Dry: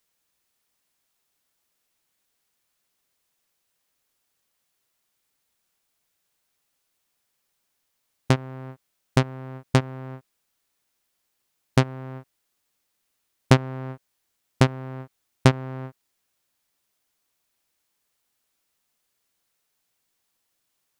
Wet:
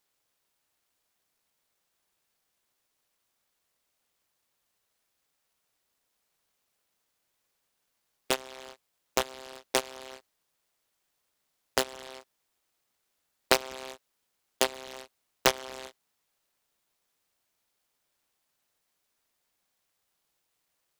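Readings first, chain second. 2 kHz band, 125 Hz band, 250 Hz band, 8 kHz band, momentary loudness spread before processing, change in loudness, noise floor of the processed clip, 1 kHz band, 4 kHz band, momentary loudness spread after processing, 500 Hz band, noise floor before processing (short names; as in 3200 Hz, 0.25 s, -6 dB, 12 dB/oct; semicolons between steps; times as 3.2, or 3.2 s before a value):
-2.0 dB, -29.5 dB, -15.5 dB, +5.5 dB, 19 LU, -6.0 dB, -79 dBFS, -3.5 dB, +2.5 dB, 20 LU, -4.0 dB, -76 dBFS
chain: HPF 420 Hz 24 dB/oct; noise-modulated delay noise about 2500 Hz, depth 0.15 ms; gain -1 dB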